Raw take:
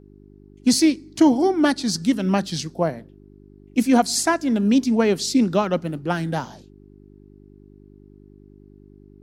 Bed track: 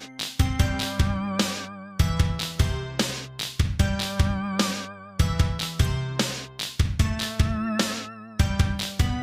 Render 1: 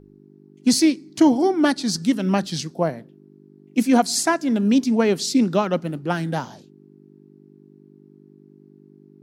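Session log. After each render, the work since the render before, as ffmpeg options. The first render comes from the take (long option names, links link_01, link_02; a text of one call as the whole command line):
ffmpeg -i in.wav -af "bandreject=frequency=50:width_type=h:width=4,bandreject=frequency=100:width_type=h:width=4" out.wav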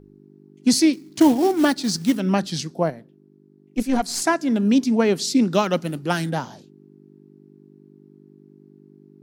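ffmpeg -i in.wav -filter_complex "[0:a]asettb=1/sr,asplit=3[link_01][link_02][link_03];[link_01]atrim=end=0.934[link_04];[link_02]atrim=start=0.93:end=2.2,asetpts=PTS-STARTPTS,afade=type=in:duration=0.004:curve=qsin,afade=type=out:start_time=1.266:duration=0.004:curve=qsin,acrusher=bits=5:mode=log:mix=0:aa=0.000001[link_05];[link_03]atrim=start=2.196[link_06];[link_04][link_05]acrossfade=duration=0.004:curve1=hsin:curve2=qsin[link_07];[link_07][link_06]acrossfade=duration=0.004:curve1=qsin:curve2=hsin,asettb=1/sr,asplit=3[link_08][link_09][link_10];[link_08]atrim=end=2.904[link_11];[link_09]atrim=start=2.9:end=4.22,asetpts=PTS-STARTPTS,afade=type=in:duration=0.004:curve=qsin,afade=type=out:start_time=1.316:duration=0.004:curve=qsin,aeval=exprs='(tanh(2.82*val(0)+0.75)-tanh(0.75))/2.82':channel_layout=same[link_12];[link_10]atrim=start=4.216[link_13];[link_11][link_12]acrossfade=duration=0.004:curve1=hsin:curve2=qsin[link_14];[link_14][link_13]acrossfade=duration=0.004:curve1=qsin:curve2=hsin,asplit=3[link_15][link_16][link_17];[link_15]afade=type=out:start_time=5.53:duration=0.02[link_18];[link_16]highshelf=frequency=3100:gain=11.5,afade=type=in:start_time=5.53:duration=0.02,afade=type=out:start_time=6.29:duration=0.02[link_19];[link_17]afade=type=in:start_time=6.29:duration=0.02[link_20];[link_18][link_19][link_20]amix=inputs=3:normalize=0" out.wav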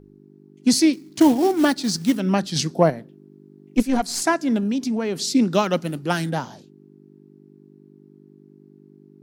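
ffmpeg -i in.wav -filter_complex "[0:a]asplit=3[link_01][link_02][link_03];[link_01]afade=type=out:start_time=2.55:duration=0.02[link_04];[link_02]acontrast=50,afade=type=in:start_time=2.55:duration=0.02,afade=type=out:start_time=3.8:duration=0.02[link_05];[link_03]afade=type=in:start_time=3.8:duration=0.02[link_06];[link_04][link_05][link_06]amix=inputs=3:normalize=0,asettb=1/sr,asplit=3[link_07][link_08][link_09];[link_07]atrim=end=4.584[link_10];[link_08]atrim=start=4.58:end=5.27,asetpts=PTS-STARTPTS,afade=type=in:duration=0.004:curve=qsin,afade=type=out:start_time=0.686:duration=0.004:curve=qsin,acompressor=threshold=-20dB:ratio=6:attack=3.2:release=140:knee=1:detection=peak[link_11];[link_09]atrim=start=5.266[link_12];[link_10][link_11]acrossfade=duration=0.004:curve1=hsin:curve2=qsin[link_13];[link_13][link_12]acrossfade=duration=0.004:curve1=qsin:curve2=hsin" out.wav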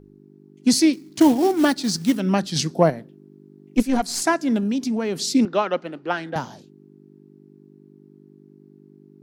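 ffmpeg -i in.wav -filter_complex "[0:a]asettb=1/sr,asplit=3[link_01][link_02][link_03];[link_01]atrim=end=5.454[link_04];[link_02]atrim=start=5.45:end=6.36,asetpts=PTS-STARTPTS,afade=type=in:duration=0.004:curve=qsin,afade=type=out:start_time=0.906:duration=0.004:curve=qsin,highpass=360,lowpass=2600[link_05];[link_03]atrim=start=6.356[link_06];[link_04][link_05]acrossfade=duration=0.004:curve1=hsin:curve2=qsin[link_07];[link_07][link_06]acrossfade=duration=0.004:curve1=qsin:curve2=hsin" out.wav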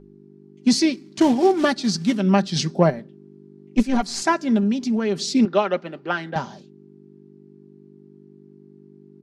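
ffmpeg -i in.wav -af "lowpass=6100,aecho=1:1:5.1:0.48" out.wav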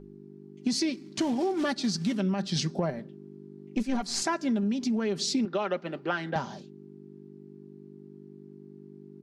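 ffmpeg -i in.wav -af "alimiter=limit=-12.5dB:level=0:latency=1:release=16,acompressor=threshold=-26dB:ratio=4" out.wav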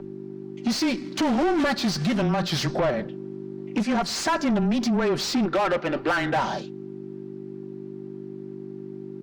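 ffmpeg -i in.wav -filter_complex "[0:a]asplit=2[link_01][link_02];[link_02]highpass=frequency=720:poles=1,volume=26dB,asoftclip=type=tanh:threshold=-14.5dB[link_03];[link_01][link_03]amix=inputs=2:normalize=0,lowpass=frequency=2100:poles=1,volume=-6dB,afreqshift=-16" out.wav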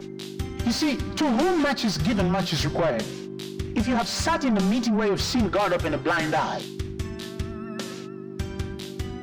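ffmpeg -i in.wav -i bed.wav -filter_complex "[1:a]volume=-10dB[link_01];[0:a][link_01]amix=inputs=2:normalize=0" out.wav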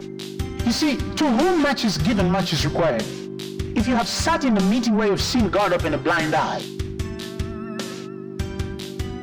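ffmpeg -i in.wav -af "volume=3.5dB" out.wav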